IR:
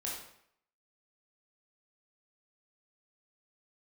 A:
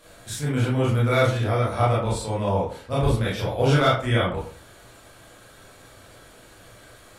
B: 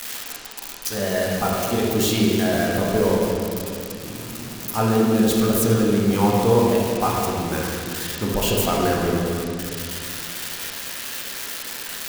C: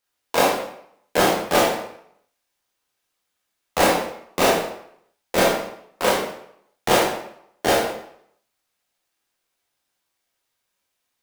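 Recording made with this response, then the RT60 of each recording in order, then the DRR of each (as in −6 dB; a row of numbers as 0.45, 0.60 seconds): C; 0.45, 2.5, 0.70 seconds; −7.0, −3.5, −4.5 decibels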